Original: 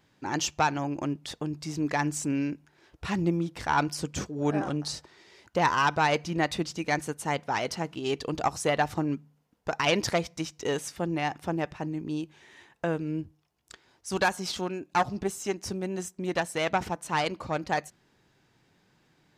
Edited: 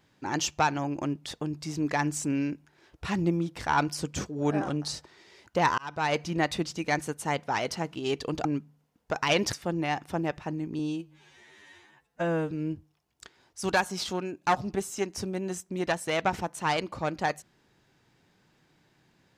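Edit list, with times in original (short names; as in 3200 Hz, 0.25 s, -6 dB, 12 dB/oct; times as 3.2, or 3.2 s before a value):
5.78–6.2 fade in
8.45–9.02 cut
10.1–10.87 cut
12.13–12.99 stretch 2×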